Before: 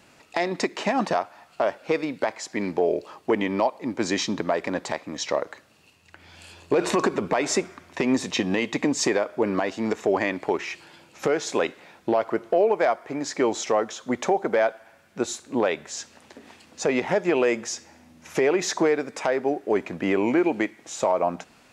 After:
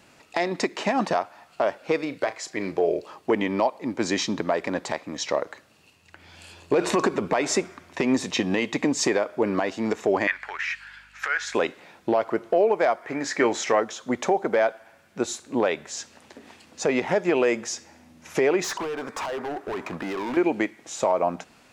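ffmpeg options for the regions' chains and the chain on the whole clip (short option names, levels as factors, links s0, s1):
-filter_complex "[0:a]asettb=1/sr,asplit=3[s0][s1][s2];[s0]atrim=end=2.024[s3];[s1]atrim=start=2.02:end=3,asetpts=PTS-STARTPTS,afade=t=in:d=0.004:c=qsin,afade=t=out:st=0.976:d=0.004:c=qsin,equalizer=f=230:t=o:w=0.37:g=-10.5,bandreject=f=880:w=7.2,asplit=2[s4][s5];[s5]adelay=36,volume=0.224[s6];[s4][s6]amix=inputs=2:normalize=0,atrim=end_sample=43218[s7];[s2]atrim=start=2.996[s8];[s3][s7]acrossfade=d=0.004:c1=hsin:c2=qsin[s9];[s9][s8]acrossfade=d=0.004:c1=qsin:c2=hsin,asettb=1/sr,asplit=3[s10][s11][s12];[s10]atrim=end=10.274[s13];[s11]atrim=start=10.27:end=11.55,asetpts=PTS-STARTPTS,afade=t=in:d=0.004:c=qsin,afade=t=out:st=1.276:d=0.004:c=qsin,highpass=f=1600:t=q:w=4.2,highshelf=f=5500:g=-7,aeval=exprs='val(0)+0.000891*(sin(2*PI*50*n/s)+sin(2*PI*2*50*n/s)/2+sin(2*PI*3*50*n/s)/3+sin(2*PI*4*50*n/s)/4+sin(2*PI*5*50*n/s)/5)':c=same[s14];[s12]atrim=start=11.546[s15];[s13][s14]acrossfade=d=0.004:c1=hsin:c2=qsin[s16];[s16][s15]acrossfade=d=0.004:c1=qsin:c2=hsin,asettb=1/sr,asplit=3[s17][s18][s19];[s17]atrim=end=13.034[s20];[s18]atrim=start=13.03:end=13.8,asetpts=PTS-STARTPTS,afade=t=in:d=0.004:c=qsin,afade=t=out:st=0.766:d=0.004:c=qsin,equalizer=f=1800:w=1.6:g=9,asplit=2[s21][s22];[s22]adelay=25,volume=0.224[s23];[s21][s23]amix=inputs=2:normalize=0,atrim=end_sample=33957[s24];[s19]atrim=start=13.796[s25];[s20][s24]acrossfade=d=0.004:c1=hsin:c2=qsin[s26];[s26][s25]acrossfade=d=0.004:c1=qsin:c2=hsin,asettb=1/sr,asplit=3[s27][s28][s29];[s27]atrim=end=18.644[s30];[s28]atrim=start=18.64:end=20.37,asetpts=PTS-STARTPTS,afade=t=in:d=0.004:c=qsin,afade=t=out:st=1.726:d=0.004:c=qsin,equalizer=f=1100:t=o:w=0.98:g=13.5,acompressor=threshold=0.0891:ratio=5:attack=3.2:release=140:knee=1:detection=peak,asoftclip=type=hard:threshold=0.0447[s31];[s29]atrim=start=20.366[s32];[s30][s31]acrossfade=d=0.004:c1=hsin:c2=qsin[s33];[s33][s32]acrossfade=d=0.004:c1=qsin:c2=hsin"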